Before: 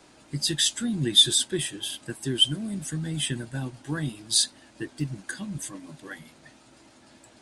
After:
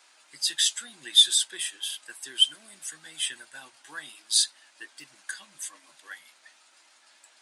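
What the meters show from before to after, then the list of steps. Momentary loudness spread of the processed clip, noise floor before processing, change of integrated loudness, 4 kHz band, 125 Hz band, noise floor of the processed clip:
22 LU, -56 dBFS, +1.5 dB, 0.0 dB, under -35 dB, -60 dBFS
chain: high-pass 1.2 kHz 12 dB/octave

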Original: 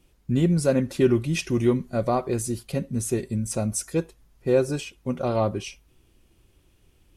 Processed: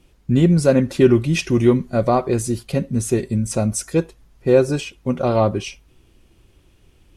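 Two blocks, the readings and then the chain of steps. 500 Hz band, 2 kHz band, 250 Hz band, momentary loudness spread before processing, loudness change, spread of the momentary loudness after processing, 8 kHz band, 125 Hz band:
+6.5 dB, +6.0 dB, +6.5 dB, 9 LU, +6.5 dB, 9 LU, +3.5 dB, +6.5 dB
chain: treble shelf 10 kHz -9 dB; trim +6.5 dB

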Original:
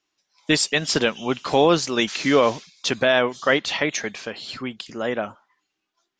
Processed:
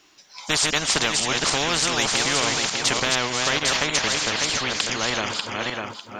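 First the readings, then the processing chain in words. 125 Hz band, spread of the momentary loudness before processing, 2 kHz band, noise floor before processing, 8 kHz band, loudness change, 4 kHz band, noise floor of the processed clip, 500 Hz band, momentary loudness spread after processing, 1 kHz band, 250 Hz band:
-0.5 dB, 14 LU, +1.5 dB, -79 dBFS, +8.5 dB, +0.5 dB, +5.0 dB, -48 dBFS, -7.5 dB, 7 LU, 0.0 dB, -6.5 dB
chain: backward echo that repeats 300 ms, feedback 42%, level -7 dB; spectrum-flattening compressor 4:1

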